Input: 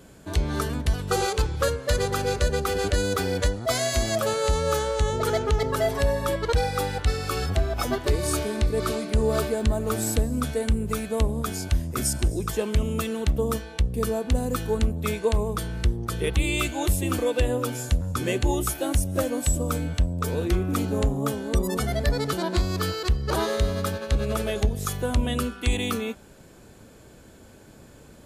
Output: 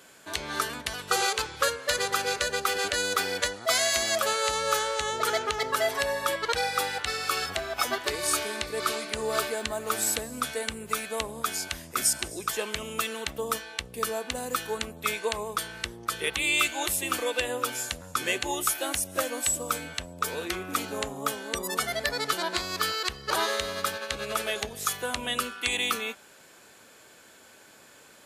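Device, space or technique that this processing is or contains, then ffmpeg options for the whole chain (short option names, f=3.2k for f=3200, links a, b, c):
filter by subtraction: -filter_complex "[0:a]asplit=2[a][b];[b]lowpass=1.8k,volume=-1[c];[a][c]amix=inputs=2:normalize=0,volume=2.5dB"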